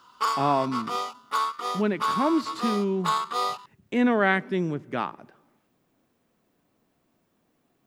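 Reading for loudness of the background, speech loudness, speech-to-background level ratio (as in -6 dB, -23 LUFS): -29.0 LUFS, -26.5 LUFS, 2.5 dB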